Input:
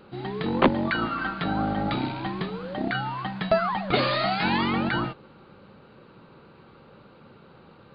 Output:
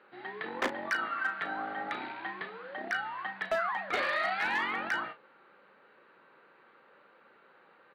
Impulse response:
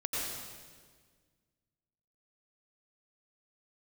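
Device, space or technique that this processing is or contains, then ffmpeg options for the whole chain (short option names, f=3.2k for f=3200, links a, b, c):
megaphone: -filter_complex "[0:a]highpass=470,lowpass=3.1k,equalizer=f=1.8k:t=o:w=0.59:g=10.5,asoftclip=type=hard:threshold=-16dB,asplit=2[a][b];[b]adelay=36,volume=-10.5dB[c];[a][c]amix=inputs=2:normalize=0,volume=-8dB"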